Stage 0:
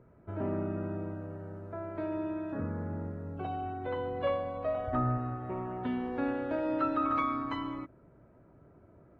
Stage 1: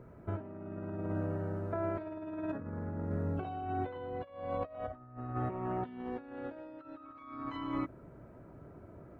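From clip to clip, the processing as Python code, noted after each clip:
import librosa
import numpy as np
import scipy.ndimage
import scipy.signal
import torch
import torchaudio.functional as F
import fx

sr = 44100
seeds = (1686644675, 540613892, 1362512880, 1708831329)

y = fx.over_compress(x, sr, threshold_db=-39.0, ratio=-0.5)
y = F.gain(torch.from_numpy(y), 1.0).numpy()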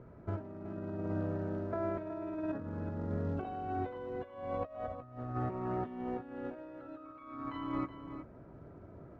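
y = fx.quant_float(x, sr, bits=4)
y = fx.air_absorb(y, sr, metres=170.0)
y = y + 10.0 ** (-10.5 / 20.0) * np.pad(y, (int(371 * sr / 1000.0), 0))[:len(y)]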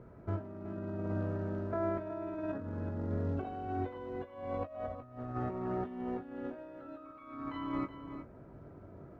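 y = fx.doubler(x, sr, ms=21.0, db=-10)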